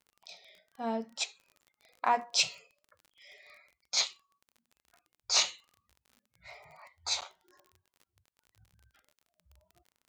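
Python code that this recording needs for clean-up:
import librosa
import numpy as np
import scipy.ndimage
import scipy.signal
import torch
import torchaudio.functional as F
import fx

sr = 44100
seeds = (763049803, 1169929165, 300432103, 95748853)

y = fx.fix_declip(x, sr, threshold_db=-15.0)
y = fx.fix_declick_ar(y, sr, threshold=6.5)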